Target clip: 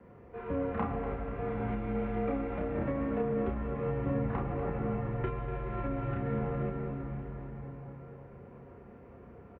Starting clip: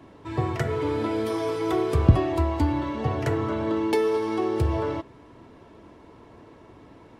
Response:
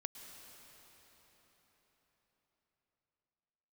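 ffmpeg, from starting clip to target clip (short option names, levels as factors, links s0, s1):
-filter_complex "[0:a]acrossover=split=560|1800[s0][s1][s2];[s2]aeval=exprs='max(val(0),0)':c=same[s3];[s0][s1][s3]amix=inputs=3:normalize=0,asetrate=33075,aresample=44100,volume=3.98,asoftclip=hard,volume=0.251,asplit=2[s4][s5];[s5]adelay=31,volume=0.794[s6];[s4][s6]amix=inputs=2:normalize=0[s7];[1:a]atrim=start_sample=2205[s8];[s7][s8]afir=irnorm=-1:irlink=0,highpass=f=190:t=q:w=0.5412,highpass=f=190:t=q:w=1.307,lowpass=f=2700:t=q:w=0.5176,lowpass=f=2700:t=q:w=0.7071,lowpass=f=2700:t=q:w=1.932,afreqshift=-280,acompressor=threshold=0.0398:ratio=6,highpass=100,aecho=1:1:243|486|729|972|1215|1458|1701:0.251|0.151|0.0904|0.0543|0.0326|0.0195|0.0117,volume=1.5" -ar 48000 -c:a mp2 -b:a 48k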